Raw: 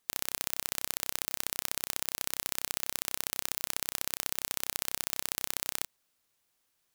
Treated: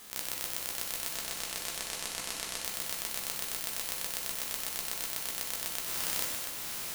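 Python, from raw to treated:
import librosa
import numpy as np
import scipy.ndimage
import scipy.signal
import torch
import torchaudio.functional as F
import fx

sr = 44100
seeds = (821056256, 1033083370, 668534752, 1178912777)

y = fx.spec_trails(x, sr, decay_s=1.69)
y = fx.lowpass(y, sr, hz=10000.0, slope=12, at=(1.1, 2.64))
y = y + 10.0 ** (-7.5 / 20.0) * np.pad(y, (int(688 * sr / 1000.0), 0))[:len(y)]
y = fx.auto_swell(y, sr, attack_ms=502.0)
y = fx.rev_gated(y, sr, seeds[0], gate_ms=450, shape='falling', drr_db=2.0)
y = fx.env_flatten(y, sr, amount_pct=50)
y = y * librosa.db_to_amplitude(5.5)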